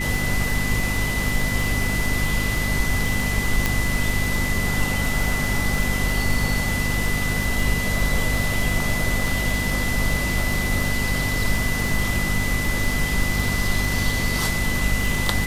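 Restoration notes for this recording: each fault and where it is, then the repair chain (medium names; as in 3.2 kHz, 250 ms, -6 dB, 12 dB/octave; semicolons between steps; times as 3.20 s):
crackle 48 per s -25 dBFS
hum 50 Hz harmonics 5 -27 dBFS
whine 2 kHz -26 dBFS
3.66 s: pop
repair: de-click; de-hum 50 Hz, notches 5; band-stop 2 kHz, Q 30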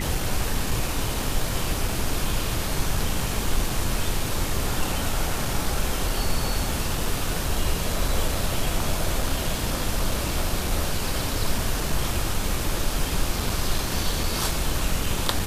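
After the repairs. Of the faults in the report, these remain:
3.66 s: pop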